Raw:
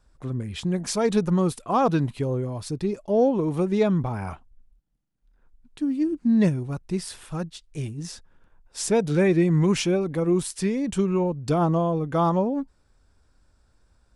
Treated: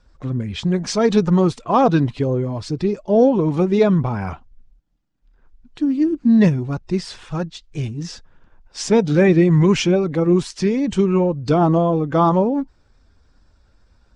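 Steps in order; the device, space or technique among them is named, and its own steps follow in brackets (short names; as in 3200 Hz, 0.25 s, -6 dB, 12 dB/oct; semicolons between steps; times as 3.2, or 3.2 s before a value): clip after many re-uploads (LPF 6500 Hz 24 dB/oct; bin magnitudes rounded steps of 15 dB); gain +6.5 dB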